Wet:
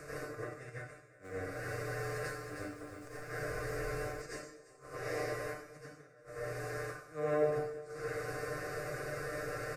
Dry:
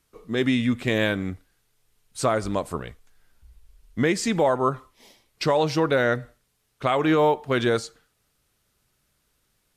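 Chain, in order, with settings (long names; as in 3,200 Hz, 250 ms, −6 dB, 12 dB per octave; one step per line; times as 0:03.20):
compressor on every frequency bin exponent 0.4
downward compressor 6 to 1, threshold −28 dBFS, peak gain reduction 15.5 dB
phaser with its sweep stopped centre 900 Hz, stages 6
gate with flip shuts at −24 dBFS, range −31 dB
parametric band 130 Hz +3 dB 2.6 octaves
single-tap delay 346 ms −20.5 dB
dense smooth reverb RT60 0.62 s, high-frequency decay 1×, pre-delay 75 ms, DRR −9.5 dB
dynamic equaliser 8,200 Hz, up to −7 dB, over −52 dBFS, Q 1.3
tuned comb filter 150 Hz, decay 0.16 s, harmonics all, mix 90%
0:00.93–0:04.22: feedback echo at a low word length 315 ms, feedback 35%, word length 10 bits, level −6 dB
level −4 dB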